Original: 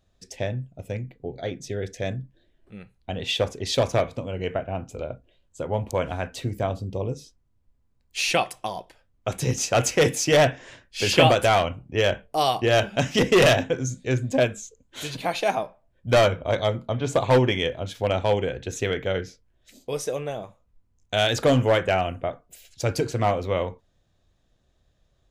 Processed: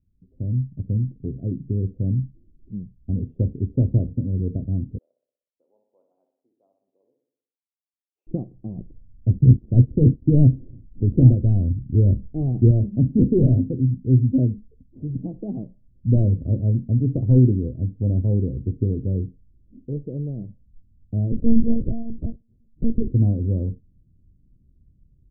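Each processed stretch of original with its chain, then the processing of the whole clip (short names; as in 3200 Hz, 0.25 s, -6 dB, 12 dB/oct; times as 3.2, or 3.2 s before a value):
4.98–8.27 ladder high-pass 1000 Hz, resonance 25% + feedback echo 61 ms, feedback 57%, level -7.5 dB
8.78–12.71 switching dead time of 0.097 ms + tilt -2 dB/oct
21.32–23.14 G.711 law mismatch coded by A + monotone LPC vocoder at 8 kHz 230 Hz
whole clip: inverse Chebyshev low-pass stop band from 1600 Hz, stop band 80 dB; dynamic EQ 170 Hz, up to -6 dB, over -44 dBFS, Q 4.7; AGC gain up to 11 dB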